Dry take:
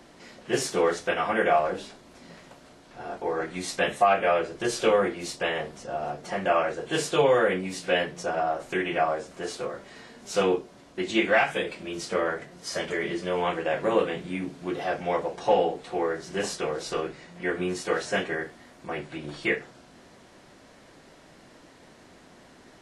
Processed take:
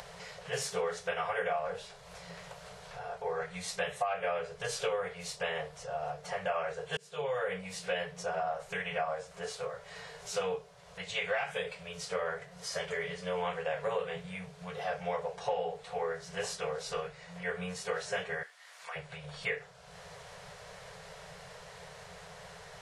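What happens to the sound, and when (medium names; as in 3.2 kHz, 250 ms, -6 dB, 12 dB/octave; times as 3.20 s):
6.97–7.68 s: fade in
18.43–18.96 s: high-pass 1.3 kHz
whole clip: upward compressor, threshold -32 dBFS; FFT band-reject 190–400 Hz; compression 6:1, threshold -24 dBFS; trim -5 dB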